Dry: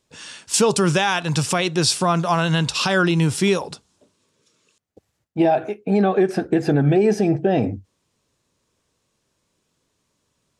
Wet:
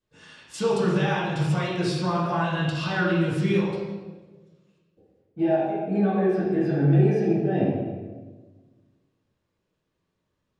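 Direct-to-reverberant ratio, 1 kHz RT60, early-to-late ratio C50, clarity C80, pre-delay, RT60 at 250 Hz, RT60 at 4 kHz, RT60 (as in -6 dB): -14.5 dB, 1.1 s, -1.0 dB, 2.5 dB, 3 ms, 1.7 s, 1.0 s, 1.3 s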